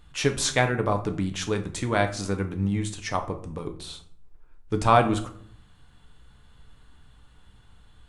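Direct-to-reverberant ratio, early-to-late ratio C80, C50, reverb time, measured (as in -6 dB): 5.5 dB, 16.5 dB, 12.5 dB, 0.55 s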